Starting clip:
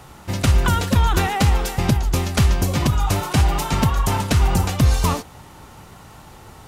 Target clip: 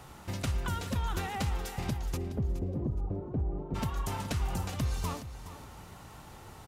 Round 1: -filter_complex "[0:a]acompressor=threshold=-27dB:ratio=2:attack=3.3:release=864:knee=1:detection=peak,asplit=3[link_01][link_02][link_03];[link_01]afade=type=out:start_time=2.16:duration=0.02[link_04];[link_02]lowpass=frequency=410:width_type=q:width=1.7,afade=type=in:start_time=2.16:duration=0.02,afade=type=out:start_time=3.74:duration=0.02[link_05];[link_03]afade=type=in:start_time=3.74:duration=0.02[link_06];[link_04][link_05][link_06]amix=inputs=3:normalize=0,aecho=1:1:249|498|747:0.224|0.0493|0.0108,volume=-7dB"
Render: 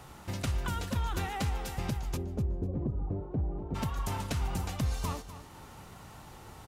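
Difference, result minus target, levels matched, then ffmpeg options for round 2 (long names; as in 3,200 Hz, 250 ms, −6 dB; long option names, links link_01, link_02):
echo 170 ms early
-filter_complex "[0:a]acompressor=threshold=-27dB:ratio=2:attack=3.3:release=864:knee=1:detection=peak,asplit=3[link_01][link_02][link_03];[link_01]afade=type=out:start_time=2.16:duration=0.02[link_04];[link_02]lowpass=frequency=410:width_type=q:width=1.7,afade=type=in:start_time=2.16:duration=0.02,afade=type=out:start_time=3.74:duration=0.02[link_05];[link_03]afade=type=in:start_time=3.74:duration=0.02[link_06];[link_04][link_05][link_06]amix=inputs=3:normalize=0,aecho=1:1:419|838|1257:0.224|0.0493|0.0108,volume=-7dB"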